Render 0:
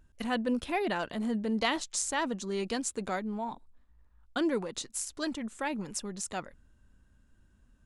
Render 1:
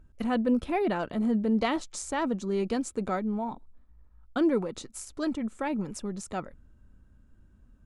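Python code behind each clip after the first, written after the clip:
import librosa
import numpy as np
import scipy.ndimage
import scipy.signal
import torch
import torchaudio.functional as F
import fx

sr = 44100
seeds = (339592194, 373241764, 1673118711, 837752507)

y = fx.tilt_shelf(x, sr, db=6.0, hz=1100.0)
y = fx.small_body(y, sr, hz=(1300.0, 2300.0), ring_ms=45, db=8)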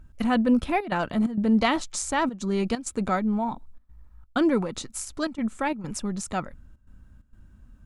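y = fx.peak_eq(x, sr, hz=420.0, db=-6.5, octaves=1.1)
y = fx.step_gate(y, sr, bpm=131, pattern='xxxxxxx.xxx.x', floor_db=-12.0, edge_ms=4.5)
y = y * 10.0 ** (7.0 / 20.0)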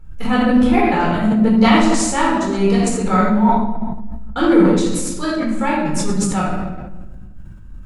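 y = fx.room_shoebox(x, sr, seeds[0], volume_m3=650.0, walls='mixed', distance_m=4.2)
y = fx.sustainer(y, sr, db_per_s=36.0)
y = y * 10.0 ** (-1.0 / 20.0)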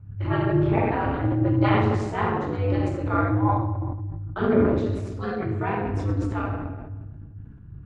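y = scipy.signal.sosfilt(scipy.signal.butter(2, 2200.0, 'lowpass', fs=sr, output='sos'), x)
y = y * np.sin(2.0 * np.pi * 100.0 * np.arange(len(y)) / sr)
y = y * 10.0 ** (-5.0 / 20.0)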